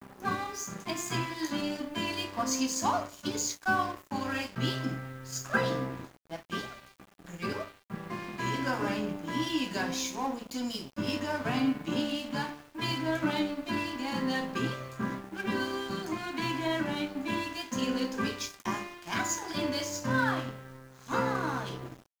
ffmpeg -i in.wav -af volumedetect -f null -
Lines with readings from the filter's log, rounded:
mean_volume: -33.2 dB
max_volume: -13.8 dB